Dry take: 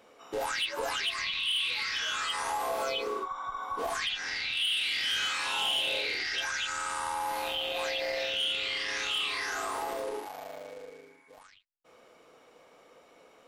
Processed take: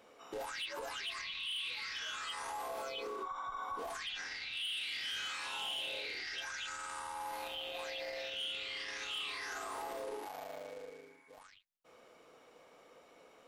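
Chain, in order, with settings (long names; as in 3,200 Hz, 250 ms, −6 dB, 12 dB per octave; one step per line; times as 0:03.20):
brickwall limiter −30.5 dBFS, peak gain reduction 9.5 dB
level −3 dB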